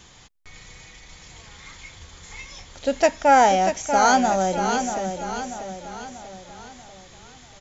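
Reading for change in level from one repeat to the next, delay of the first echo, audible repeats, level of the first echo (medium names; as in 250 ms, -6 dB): -6.5 dB, 639 ms, 5, -7.5 dB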